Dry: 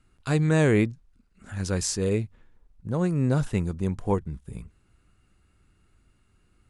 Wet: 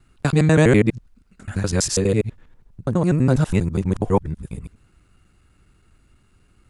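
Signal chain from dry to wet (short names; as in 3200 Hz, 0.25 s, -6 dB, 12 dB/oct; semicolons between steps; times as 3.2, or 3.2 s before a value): local time reversal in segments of 82 ms; gain +6.5 dB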